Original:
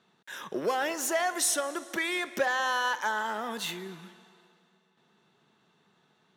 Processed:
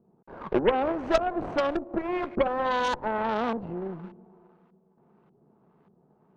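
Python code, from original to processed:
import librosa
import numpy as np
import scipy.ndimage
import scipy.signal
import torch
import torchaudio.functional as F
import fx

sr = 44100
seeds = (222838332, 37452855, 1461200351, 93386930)

y = scipy.ndimage.median_filter(x, 25, mode='constant')
y = fx.filter_lfo_lowpass(y, sr, shape='saw_up', hz=1.7, low_hz=440.0, high_hz=2300.0, q=0.79)
y = fx.cheby_harmonics(y, sr, harmonics=(4, 6), levels_db=(-11, -11), full_scale_db=-20.5)
y = F.gain(torch.from_numpy(y), 8.0).numpy()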